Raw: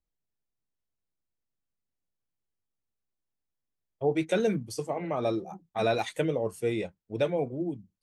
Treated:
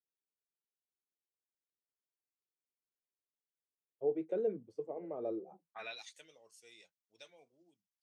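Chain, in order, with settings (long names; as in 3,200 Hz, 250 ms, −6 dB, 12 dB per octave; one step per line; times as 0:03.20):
band-pass filter sweep 430 Hz → 5,600 Hz, 0:05.51–0:06.05
level −5.5 dB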